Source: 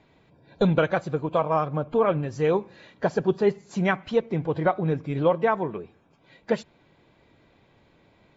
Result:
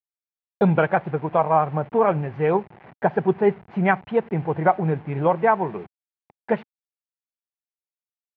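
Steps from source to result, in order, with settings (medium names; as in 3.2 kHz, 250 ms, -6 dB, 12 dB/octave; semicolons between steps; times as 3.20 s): send-on-delta sampling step -41 dBFS; cabinet simulation 120–2400 Hz, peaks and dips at 280 Hz -8 dB, 520 Hz -5 dB, 810 Hz +6 dB, 1.2 kHz -3 dB; trim +4.5 dB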